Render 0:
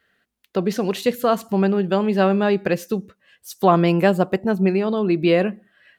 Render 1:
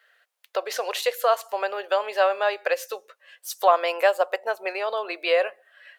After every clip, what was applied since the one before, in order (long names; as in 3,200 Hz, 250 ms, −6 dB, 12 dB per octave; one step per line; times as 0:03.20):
elliptic high-pass filter 530 Hz, stop band 70 dB
in parallel at 0 dB: downward compressor, threshold −32 dBFS, peak gain reduction 19 dB
on the sum: level −1.5 dB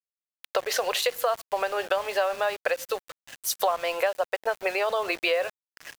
downward compressor 6 to 1, threshold −31 dBFS, peak gain reduction 17.5 dB
centre clipping without the shift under −44.5 dBFS
level +8 dB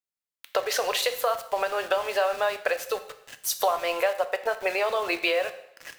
coupled-rooms reverb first 0.68 s, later 2.2 s, from −25 dB, DRR 8.5 dB